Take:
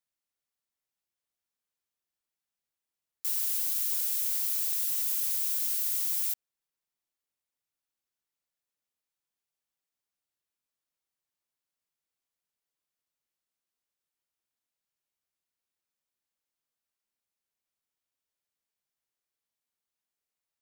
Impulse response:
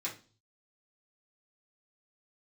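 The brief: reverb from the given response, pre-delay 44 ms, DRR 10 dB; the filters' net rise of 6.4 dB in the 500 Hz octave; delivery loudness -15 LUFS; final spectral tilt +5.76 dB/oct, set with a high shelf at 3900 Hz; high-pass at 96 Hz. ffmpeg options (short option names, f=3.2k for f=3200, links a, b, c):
-filter_complex "[0:a]highpass=96,equalizer=f=500:t=o:g=8,highshelf=f=3.9k:g=3.5,asplit=2[a][b];[1:a]atrim=start_sample=2205,adelay=44[c];[b][c]afir=irnorm=-1:irlink=0,volume=-12dB[d];[a][d]amix=inputs=2:normalize=0,volume=8dB"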